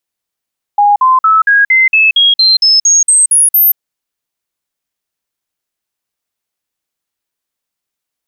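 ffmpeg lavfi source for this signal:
-f lavfi -i "aevalsrc='0.596*clip(min(mod(t,0.23),0.18-mod(t,0.23))/0.005,0,1)*sin(2*PI*821*pow(2,floor(t/0.23)/3)*mod(t,0.23))':d=2.99:s=44100"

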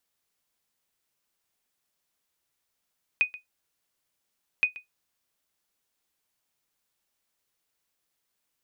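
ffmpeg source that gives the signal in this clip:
-f lavfi -i "aevalsrc='0.211*(sin(2*PI*2490*mod(t,1.42))*exp(-6.91*mod(t,1.42)/0.14)+0.119*sin(2*PI*2490*max(mod(t,1.42)-0.13,0))*exp(-6.91*max(mod(t,1.42)-0.13,0)/0.14))':d=2.84:s=44100"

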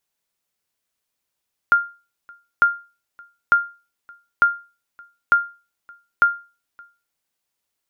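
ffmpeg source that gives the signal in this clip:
-f lavfi -i "aevalsrc='0.473*(sin(2*PI*1400*mod(t,0.9))*exp(-6.91*mod(t,0.9)/0.32)+0.0355*sin(2*PI*1400*max(mod(t,0.9)-0.57,0))*exp(-6.91*max(mod(t,0.9)-0.57,0)/0.32))':d=5.4:s=44100"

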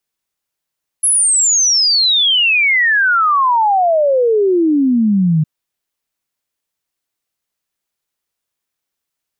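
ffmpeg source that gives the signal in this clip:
-f lavfi -i "aevalsrc='0.335*clip(min(t,4.41-t)/0.01,0,1)*sin(2*PI*11000*4.41/log(150/11000)*(exp(log(150/11000)*t/4.41)-1))':d=4.41:s=44100"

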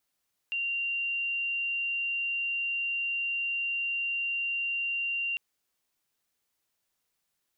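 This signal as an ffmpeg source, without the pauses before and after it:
-f lavfi -i "aevalsrc='0.0398*sin(2*PI*2770*t)':d=4.85:s=44100"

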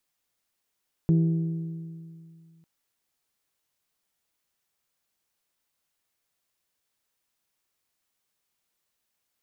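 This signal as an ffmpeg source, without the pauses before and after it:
-f lavfi -i "aevalsrc='0.15*pow(10,-3*t/2.37)*sin(2*PI*164*t)+0.0501*pow(10,-3*t/1.925)*sin(2*PI*328*t)+0.0168*pow(10,-3*t/1.823)*sin(2*PI*393.6*t)+0.00562*pow(10,-3*t/1.705)*sin(2*PI*492*t)+0.00188*pow(10,-3*t/1.564)*sin(2*PI*656*t)+0.000631*pow(10,-3*t/1.462)*sin(2*PI*820*t)':d=1.55:s=44100"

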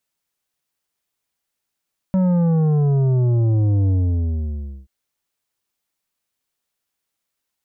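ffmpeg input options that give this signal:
-f lavfi -i "aevalsrc='0.178*clip((2.73-t)/0.98,0,1)*tanh(2.82*sin(2*PI*190*2.73/log(65/190)*(exp(log(65/190)*t/2.73)-1)))/tanh(2.82)':d=2.73:s=44100"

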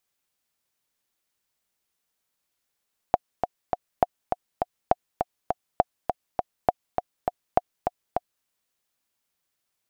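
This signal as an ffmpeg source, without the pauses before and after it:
-f lavfi -i "aevalsrc='pow(10,(-4-6*gte(mod(t,3*60/203),60/203))/20)*sin(2*PI*721*mod(t,60/203))*exp(-6.91*mod(t,60/203)/0.03)':d=5.32:s=44100"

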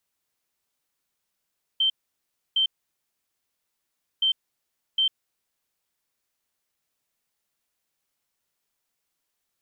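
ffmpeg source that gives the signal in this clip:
-f lavfi -i "aevalsrc='0.119*sin(2*PI*3120*t)*clip(min(mod(mod(t,2.42),0.76),0.1-mod(mod(t,2.42),0.76))/0.005,0,1)*lt(mod(t,2.42),1.52)':d=4.84:s=44100"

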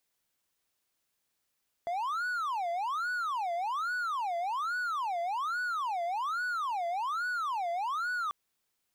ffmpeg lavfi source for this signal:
-f lavfi -i "aevalsrc='0.0398*(1-4*abs(mod((1080.5*t-399.5/(2*PI*1.2)*sin(2*PI*1.2*t))+0.25,1)-0.5))':d=6.44:s=44100"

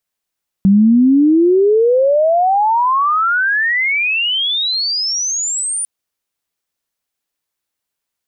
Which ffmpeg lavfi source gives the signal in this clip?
-f lavfi -i "aevalsrc='pow(10,(-6-11*t/5.2)/20)*sin(2*PI*190*5.2/log(9500/190)*(exp(log(9500/190)*t/5.2)-1))':d=5.2:s=44100"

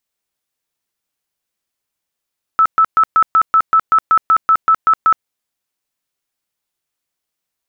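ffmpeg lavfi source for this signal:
-f lavfi -i "aevalsrc='0.447*sin(2*PI*1310*mod(t,0.19))*lt(mod(t,0.19),87/1310)':d=2.66:s=44100"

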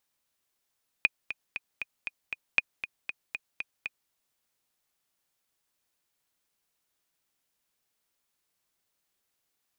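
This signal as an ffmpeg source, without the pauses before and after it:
-f lavfi -i "aevalsrc='pow(10,(-8-12*gte(mod(t,6*60/235),60/235))/20)*sin(2*PI*2470*mod(t,60/235))*exp(-6.91*mod(t,60/235)/0.03)':d=3.06:s=44100"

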